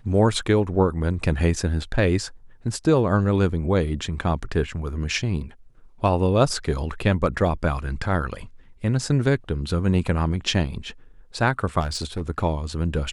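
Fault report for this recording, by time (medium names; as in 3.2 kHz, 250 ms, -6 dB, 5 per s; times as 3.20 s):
11.80–12.22 s: clipped -22.5 dBFS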